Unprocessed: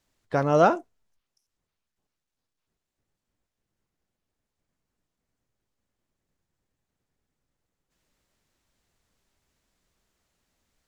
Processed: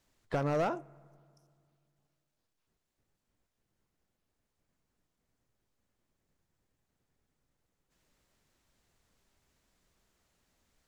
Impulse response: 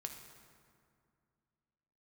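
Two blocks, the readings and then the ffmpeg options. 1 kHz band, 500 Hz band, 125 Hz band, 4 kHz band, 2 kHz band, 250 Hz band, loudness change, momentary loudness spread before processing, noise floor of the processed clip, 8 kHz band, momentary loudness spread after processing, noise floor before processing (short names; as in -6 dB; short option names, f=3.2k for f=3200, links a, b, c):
-12.5 dB, -11.0 dB, -7.0 dB, -8.0 dB, -10.0 dB, -9.0 dB, -11.0 dB, 11 LU, -84 dBFS, n/a, 8 LU, -85 dBFS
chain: -filter_complex "[0:a]acompressor=threshold=-27dB:ratio=6,asoftclip=type=hard:threshold=-26.5dB,asplit=2[a][b];[1:a]atrim=start_sample=2205,lowpass=2.6k[c];[b][c]afir=irnorm=-1:irlink=0,volume=-15dB[d];[a][d]amix=inputs=2:normalize=0"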